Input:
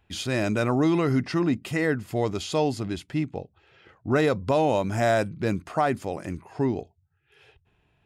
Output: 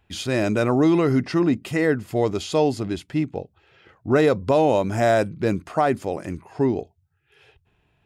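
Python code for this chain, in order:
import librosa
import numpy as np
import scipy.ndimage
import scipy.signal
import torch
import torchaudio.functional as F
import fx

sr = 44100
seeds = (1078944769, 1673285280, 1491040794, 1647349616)

y = fx.dynamic_eq(x, sr, hz=420.0, q=0.96, threshold_db=-34.0, ratio=4.0, max_db=4)
y = F.gain(torch.from_numpy(y), 1.5).numpy()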